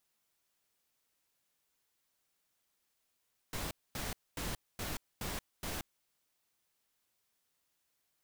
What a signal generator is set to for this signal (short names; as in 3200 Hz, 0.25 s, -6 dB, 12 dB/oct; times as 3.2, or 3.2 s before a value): noise bursts pink, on 0.18 s, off 0.24 s, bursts 6, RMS -39 dBFS